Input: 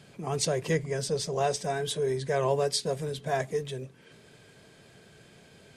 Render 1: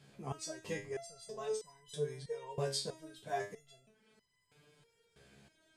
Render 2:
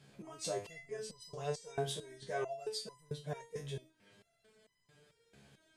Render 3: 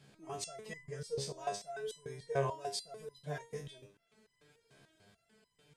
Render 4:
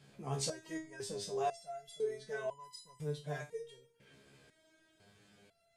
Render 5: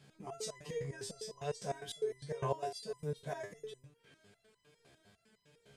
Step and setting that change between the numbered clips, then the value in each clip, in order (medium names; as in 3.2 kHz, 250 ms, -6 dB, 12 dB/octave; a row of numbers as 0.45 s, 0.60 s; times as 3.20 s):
resonator arpeggio, rate: 3.1 Hz, 4.5 Hz, 6.8 Hz, 2 Hz, 9.9 Hz